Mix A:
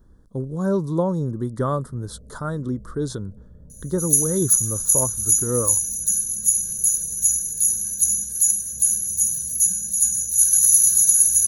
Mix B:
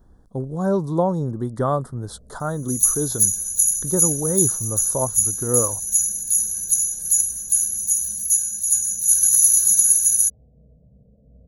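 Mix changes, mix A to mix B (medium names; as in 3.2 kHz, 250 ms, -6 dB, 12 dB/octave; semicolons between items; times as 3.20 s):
first sound -5.0 dB; second sound: entry -1.30 s; master: add peaking EQ 750 Hz +10.5 dB 0.46 oct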